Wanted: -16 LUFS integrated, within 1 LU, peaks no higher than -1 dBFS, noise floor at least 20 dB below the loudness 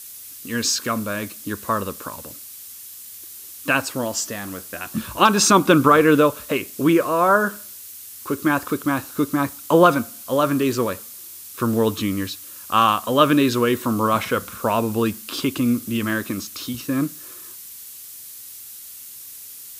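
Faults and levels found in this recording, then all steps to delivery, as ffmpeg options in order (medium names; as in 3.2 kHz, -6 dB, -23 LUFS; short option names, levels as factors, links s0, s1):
noise floor -39 dBFS; noise floor target -41 dBFS; loudness -20.5 LUFS; peak level -1.5 dBFS; loudness target -16.0 LUFS
-> -af "afftdn=nr=6:nf=-39"
-af "volume=1.68,alimiter=limit=0.891:level=0:latency=1"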